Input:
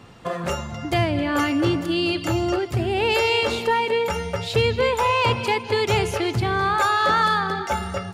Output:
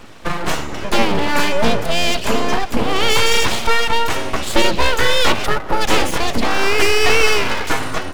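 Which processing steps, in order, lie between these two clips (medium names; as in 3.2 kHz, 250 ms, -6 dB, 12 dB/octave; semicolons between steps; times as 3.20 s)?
time-frequency box 5.46–5.81 s, 1.2–10 kHz -17 dB; full-wave rectifier; trim +8.5 dB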